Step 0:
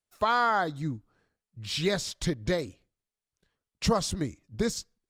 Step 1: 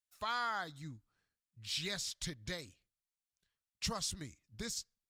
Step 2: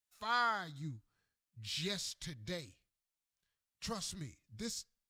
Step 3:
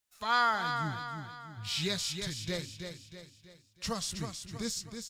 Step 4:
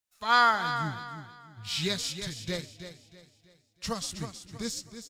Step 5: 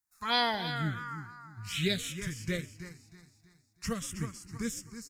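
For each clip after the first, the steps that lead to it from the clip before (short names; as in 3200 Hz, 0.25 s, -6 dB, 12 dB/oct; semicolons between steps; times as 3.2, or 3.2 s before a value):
passive tone stack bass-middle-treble 5-5-5; gain +1.5 dB
harmonic-percussive split percussive -12 dB; gain +4.5 dB
feedback echo 0.321 s, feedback 45%, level -7 dB; gain +6 dB
frequency-shifting echo 0.127 s, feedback 51%, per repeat +70 Hz, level -20 dB; upward expander 1.5:1, over -47 dBFS; gain +6 dB
envelope phaser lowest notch 530 Hz, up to 1300 Hz, full sweep at -23 dBFS; gain +2.5 dB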